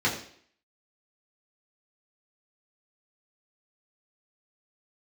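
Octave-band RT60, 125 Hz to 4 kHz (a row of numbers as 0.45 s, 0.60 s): 0.50 s, 0.60 s, 0.60 s, 0.55 s, 0.60 s, 0.60 s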